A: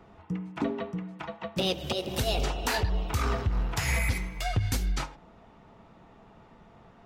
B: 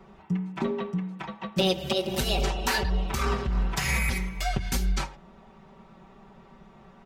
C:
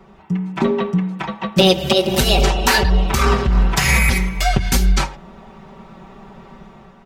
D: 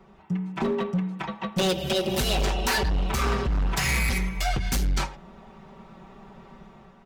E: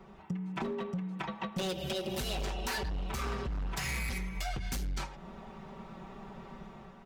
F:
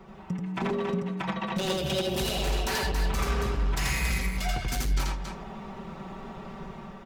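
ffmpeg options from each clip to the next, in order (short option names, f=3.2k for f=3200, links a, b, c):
-af "aecho=1:1:5.2:0.92"
-af "dynaudnorm=f=130:g=7:m=6.5dB,volume=5dB"
-af "volume=13.5dB,asoftclip=hard,volume=-13.5dB,volume=-7dB"
-af "acompressor=threshold=-34dB:ratio=6"
-af "aecho=1:1:84.55|277:0.891|0.501,volume=4dB"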